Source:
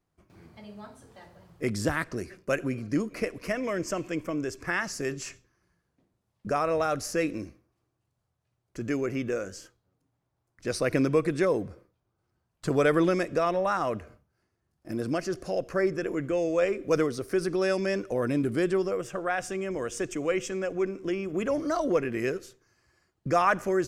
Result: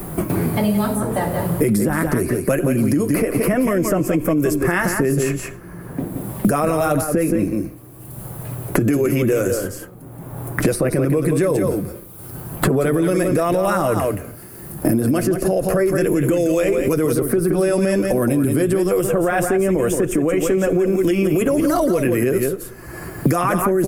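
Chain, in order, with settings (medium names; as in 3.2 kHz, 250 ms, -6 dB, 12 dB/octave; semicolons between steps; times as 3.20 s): FFT filter 290 Hz 0 dB, 6 kHz -13 dB, 11 kHz +11 dB; compression 3:1, threshold -33 dBFS, peak gain reduction 10 dB; flange 1.1 Hz, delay 5 ms, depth 2.6 ms, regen -39%; on a send: delay 173 ms -8.5 dB; on the sum: loudness maximiser +34 dB; three bands compressed up and down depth 100%; trim -9 dB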